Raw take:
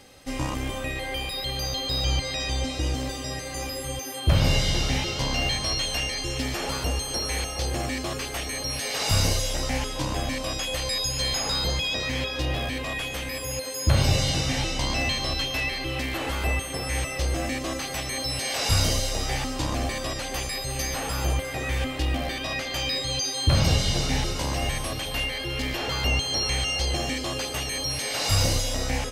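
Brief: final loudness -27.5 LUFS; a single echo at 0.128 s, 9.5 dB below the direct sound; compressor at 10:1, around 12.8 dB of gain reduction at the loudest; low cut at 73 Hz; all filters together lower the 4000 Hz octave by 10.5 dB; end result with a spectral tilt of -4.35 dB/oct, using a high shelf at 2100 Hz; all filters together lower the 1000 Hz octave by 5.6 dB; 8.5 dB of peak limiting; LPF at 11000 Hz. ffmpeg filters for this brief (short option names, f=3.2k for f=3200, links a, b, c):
-af "highpass=73,lowpass=11k,equalizer=f=1k:t=o:g=-6,highshelf=f=2.1k:g=-7,equalizer=f=4k:t=o:g=-6.5,acompressor=threshold=-31dB:ratio=10,alimiter=level_in=5dB:limit=-24dB:level=0:latency=1,volume=-5dB,aecho=1:1:128:0.335,volume=10dB"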